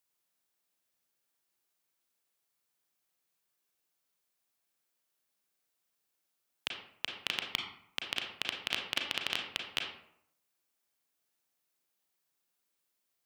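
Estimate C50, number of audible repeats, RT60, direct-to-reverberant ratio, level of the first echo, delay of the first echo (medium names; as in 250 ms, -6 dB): 5.0 dB, no echo, 0.70 s, 1.5 dB, no echo, no echo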